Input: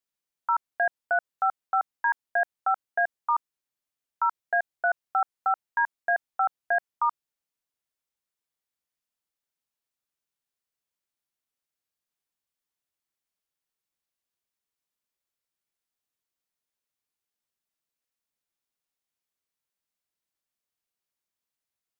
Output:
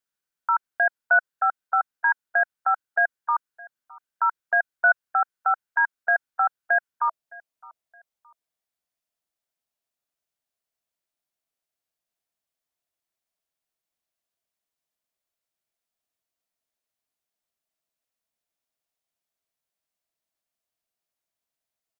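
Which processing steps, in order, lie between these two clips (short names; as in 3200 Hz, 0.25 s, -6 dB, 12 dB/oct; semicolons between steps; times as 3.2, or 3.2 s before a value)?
bell 1500 Hz +9.5 dB 0.29 oct, from 7.08 s 660 Hz; feedback echo 0.616 s, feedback 36%, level -23.5 dB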